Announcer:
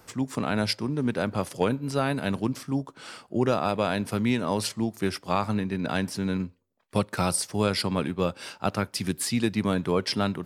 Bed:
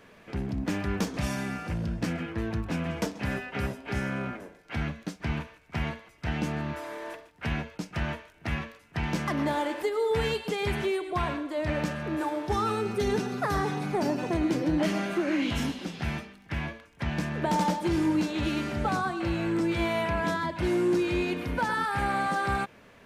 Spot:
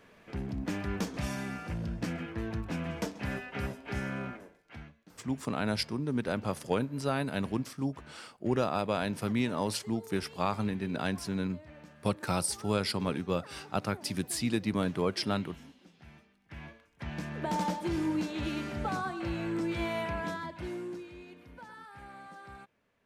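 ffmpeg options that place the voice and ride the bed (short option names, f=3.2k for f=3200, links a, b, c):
-filter_complex "[0:a]adelay=5100,volume=-5dB[a];[1:a]volume=12.5dB,afade=t=out:st=4.22:d=0.69:silence=0.125893,afade=t=in:st=16.17:d=1.39:silence=0.141254,afade=t=out:st=20:d=1.11:silence=0.16788[b];[a][b]amix=inputs=2:normalize=0"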